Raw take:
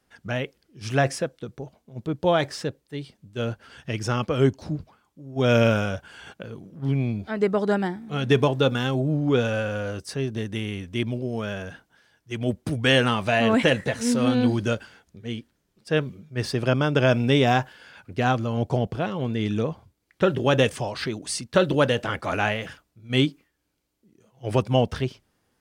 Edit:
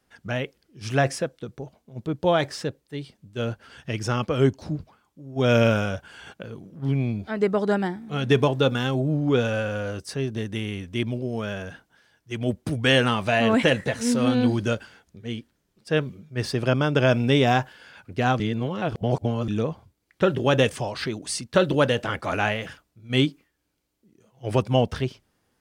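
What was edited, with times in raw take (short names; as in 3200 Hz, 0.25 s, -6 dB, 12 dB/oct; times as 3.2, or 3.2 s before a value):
18.4–19.48 reverse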